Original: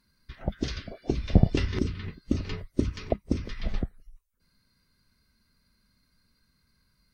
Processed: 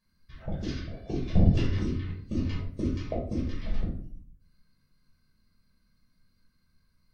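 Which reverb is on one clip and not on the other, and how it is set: simulated room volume 600 m³, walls furnished, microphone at 5.6 m; trim -12 dB

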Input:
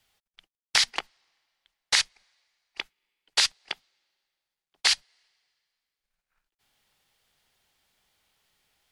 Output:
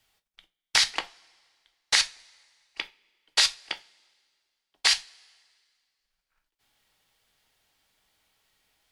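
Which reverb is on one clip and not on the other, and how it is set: two-slope reverb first 0.24 s, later 1.9 s, from -27 dB, DRR 7.5 dB

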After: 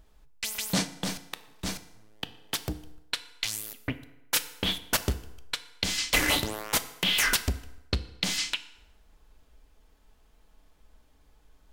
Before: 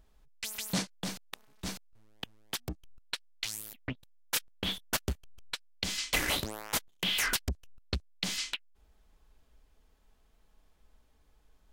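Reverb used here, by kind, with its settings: FDN reverb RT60 0.94 s, low-frequency decay 0.8×, high-frequency decay 0.75×, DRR 10.5 dB; trim +5 dB

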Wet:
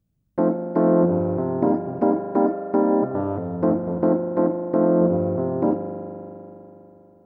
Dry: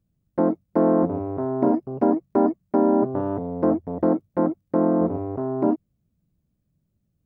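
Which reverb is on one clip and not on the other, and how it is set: spring tank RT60 3.4 s, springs 40 ms, chirp 45 ms, DRR 5.5 dB

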